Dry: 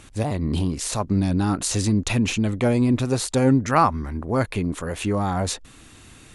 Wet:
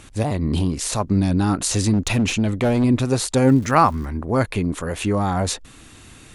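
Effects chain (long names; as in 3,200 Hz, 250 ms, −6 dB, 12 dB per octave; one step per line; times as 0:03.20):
0:01.93–0:02.84: gain into a clipping stage and back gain 16.5 dB
0:03.44–0:04.04: surface crackle 300 per second −36 dBFS
level +2.5 dB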